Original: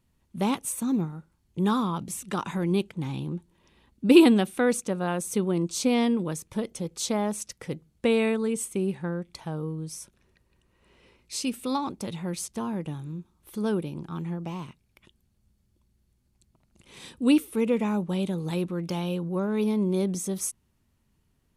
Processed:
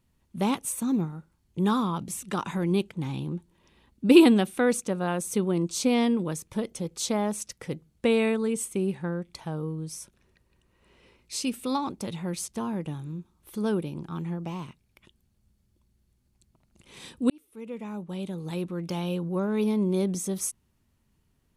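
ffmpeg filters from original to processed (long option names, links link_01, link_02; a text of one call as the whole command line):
ffmpeg -i in.wav -filter_complex "[0:a]asplit=2[link_01][link_02];[link_01]atrim=end=17.3,asetpts=PTS-STARTPTS,afade=type=out:start_time=17.296:duration=0.004:curve=hsin[link_03];[link_02]atrim=start=17.3,asetpts=PTS-STARTPTS,afade=type=in:duration=1.87[link_04];[link_03][link_04]concat=n=2:v=0:a=1" out.wav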